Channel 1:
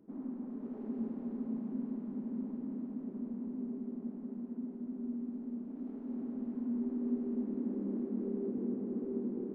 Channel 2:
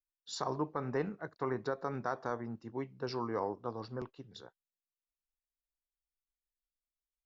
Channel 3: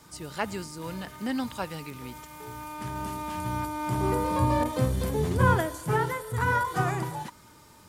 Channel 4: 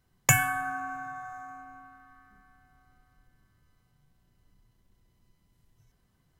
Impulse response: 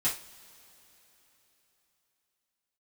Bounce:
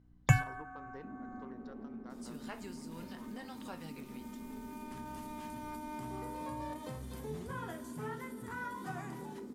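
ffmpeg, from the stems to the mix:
-filter_complex "[0:a]adelay=950,volume=0.75[s0];[1:a]aeval=exprs='0.0944*(cos(1*acos(clip(val(0)/0.0944,-1,1)))-cos(1*PI/2))+0.0106*(cos(4*acos(clip(val(0)/0.0944,-1,1)))-cos(4*PI/2))':c=same,volume=0.178,asplit=2[s1][s2];[2:a]adelay=2100,volume=0.335,asplit=2[s3][s4];[s4]volume=0.141[s5];[3:a]aemphasis=mode=reproduction:type=riaa,volume=0.473[s6];[s2]apad=whole_len=281812[s7];[s6][s7]sidechaincompress=threshold=0.002:ratio=8:attack=42:release=567[s8];[s0][s1][s3]amix=inputs=3:normalize=0,aeval=exprs='val(0)+0.00126*(sin(2*PI*60*n/s)+sin(2*PI*2*60*n/s)/2+sin(2*PI*3*60*n/s)/3+sin(2*PI*4*60*n/s)/4+sin(2*PI*5*60*n/s)/5)':c=same,acompressor=threshold=0.00891:ratio=6,volume=1[s9];[4:a]atrim=start_sample=2205[s10];[s5][s10]afir=irnorm=-1:irlink=0[s11];[s8][s9][s11]amix=inputs=3:normalize=0,lowshelf=f=150:g=-6"

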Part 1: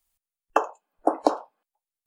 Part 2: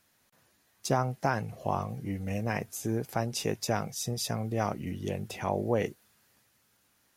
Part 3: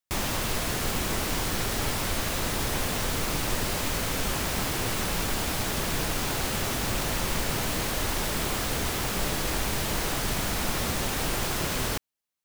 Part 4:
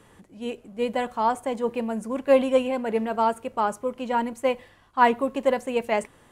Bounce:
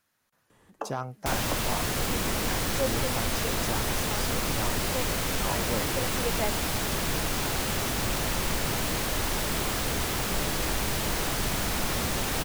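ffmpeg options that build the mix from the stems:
-filter_complex "[0:a]acrossover=split=760[s0][s1];[s0]aeval=exprs='val(0)*(1-0.5/2+0.5/2*cos(2*PI*1.6*n/s))':c=same[s2];[s1]aeval=exprs='val(0)*(1-0.5/2-0.5/2*cos(2*PI*1.6*n/s))':c=same[s3];[s2][s3]amix=inputs=2:normalize=0,adelay=250,volume=0.266[s4];[1:a]equalizer=f=1300:t=o:w=1:g=5,volume=0.473,asplit=2[s5][s6];[2:a]adelay=1150,volume=1[s7];[3:a]adelay=500,volume=0.473[s8];[s6]apad=whole_len=300757[s9];[s8][s9]sidechaincompress=threshold=0.00794:ratio=8:attack=16:release=412[s10];[s4][s5][s7][s10]amix=inputs=4:normalize=0,asoftclip=type=hard:threshold=0.1"

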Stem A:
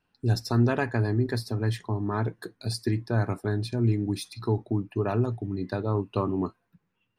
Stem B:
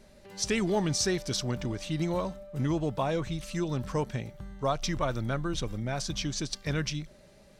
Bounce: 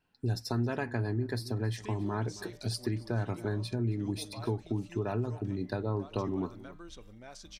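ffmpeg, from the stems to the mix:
-filter_complex "[0:a]bandreject=f=1200:w=12,volume=0.841,asplit=2[s0][s1];[s1]volume=0.0944[s2];[1:a]equalizer=f=140:t=o:w=0.6:g=-13,bandreject=f=157:t=h:w=4,bandreject=f=314:t=h:w=4,bandreject=f=471:t=h:w=4,bandreject=f=628:t=h:w=4,bandreject=f=785:t=h:w=4,bandreject=f=942:t=h:w=4,bandreject=f=1099:t=h:w=4,bandreject=f=1256:t=h:w=4,bandreject=f=1413:t=h:w=4,bandreject=f=1570:t=h:w=4,bandreject=f=1727:t=h:w=4,bandreject=f=1884:t=h:w=4,bandreject=f=2041:t=h:w=4,bandreject=f=2198:t=h:w=4,bandreject=f=2355:t=h:w=4,bandreject=f=2512:t=h:w=4,bandreject=f=2669:t=h:w=4,bandreject=f=2826:t=h:w=4,bandreject=f=2983:t=h:w=4,bandreject=f=3140:t=h:w=4,bandreject=f=3297:t=h:w=4,bandreject=f=3454:t=h:w=4,bandreject=f=3611:t=h:w=4,bandreject=f=3768:t=h:w=4,bandreject=f=3925:t=h:w=4,alimiter=limit=0.0794:level=0:latency=1:release=123,adelay=1350,volume=0.188[s3];[s2]aecho=0:1:272:1[s4];[s0][s3][s4]amix=inputs=3:normalize=0,acompressor=threshold=0.0316:ratio=2.5"

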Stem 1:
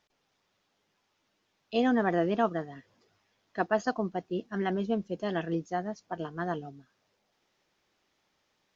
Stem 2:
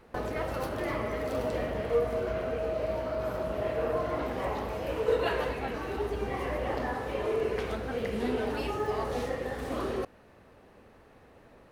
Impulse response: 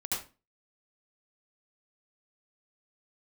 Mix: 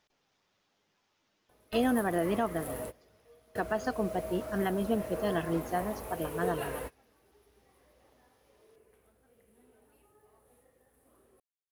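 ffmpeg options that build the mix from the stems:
-filter_complex "[0:a]volume=1,asplit=2[s0][s1];[1:a]highshelf=f=7600:t=q:w=3:g=14,acrusher=bits=6:mix=0:aa=0.5,adelay=1350,volume=0.422[s2];[s1]apad=whole_len=576080[s3];[s2][s3]sidechaingate=range=0.0501:threshold=0.00141:ratio=16:detection=peak[s4];[s0][s4]amix=inputs=2:normalize=0,alimiter=limit=0.133:level=0:latency=1:release=197"

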